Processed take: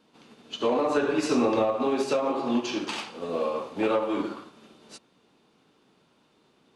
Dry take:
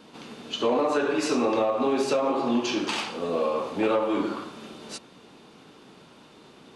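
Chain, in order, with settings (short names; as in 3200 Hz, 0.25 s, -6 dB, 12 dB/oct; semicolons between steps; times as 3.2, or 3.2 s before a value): 0.86–1.76 low shelf 170 Hz +8.5 dB; upward expander 1.5:1, over -46 dBFS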